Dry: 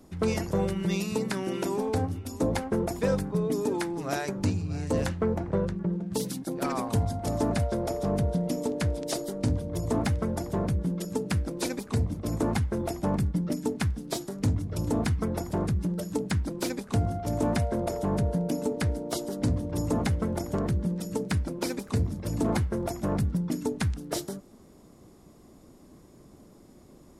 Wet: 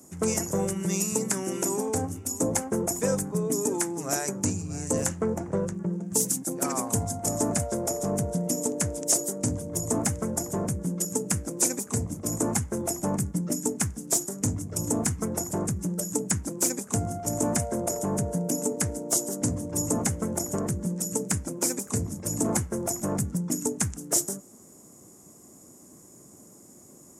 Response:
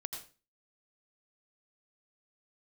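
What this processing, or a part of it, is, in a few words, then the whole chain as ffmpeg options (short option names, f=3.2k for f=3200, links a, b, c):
budget condenser microphone: -af "highpass=110,highshelf=f=5.3k:t=q:w=3:g=10.5"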